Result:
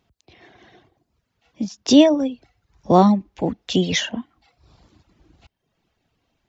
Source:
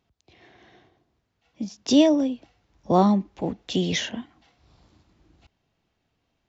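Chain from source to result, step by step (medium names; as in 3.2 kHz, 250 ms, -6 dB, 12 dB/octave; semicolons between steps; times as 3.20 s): reverb removal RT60 0.68 s; trim +5.5 dB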